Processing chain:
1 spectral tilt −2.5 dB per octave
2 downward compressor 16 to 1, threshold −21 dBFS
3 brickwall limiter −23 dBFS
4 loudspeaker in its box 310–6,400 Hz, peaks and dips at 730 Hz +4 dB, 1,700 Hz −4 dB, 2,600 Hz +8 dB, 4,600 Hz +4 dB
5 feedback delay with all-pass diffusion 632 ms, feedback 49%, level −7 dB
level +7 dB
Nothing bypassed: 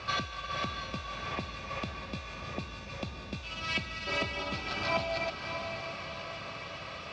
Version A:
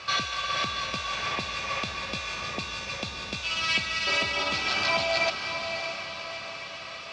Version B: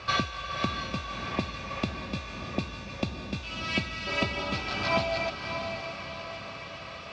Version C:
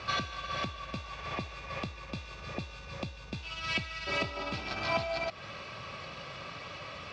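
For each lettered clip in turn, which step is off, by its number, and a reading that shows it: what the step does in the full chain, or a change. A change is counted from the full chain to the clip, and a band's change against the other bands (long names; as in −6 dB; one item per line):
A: 1, 125 Hz band −8.0 dB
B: 3, average gain reduction 2.5 dB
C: 5, echo-to-direct ratio −6.0 dB to none audible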